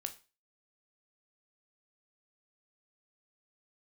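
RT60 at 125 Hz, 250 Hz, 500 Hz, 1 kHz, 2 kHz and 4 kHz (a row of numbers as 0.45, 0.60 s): 0.30, 0.30, 0.30, 0.35, 0.30, 0.35 s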